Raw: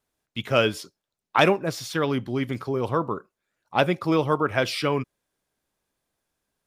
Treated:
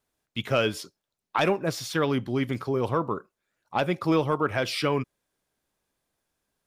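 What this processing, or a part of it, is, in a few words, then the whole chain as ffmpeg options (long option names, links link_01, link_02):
soft clipper into limiter: -af "asoftclip=type=tanh:threshold=-6.5dB,alimiter=limit=-13dB:level=0:latency=1:release=218"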